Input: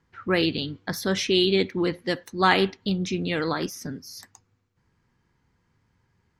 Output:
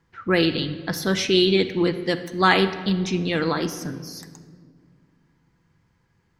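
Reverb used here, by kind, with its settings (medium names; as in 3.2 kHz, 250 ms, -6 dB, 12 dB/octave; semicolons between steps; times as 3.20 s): simulated room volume 3300 m³, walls mixed, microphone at 0.73 m; trim +2 dB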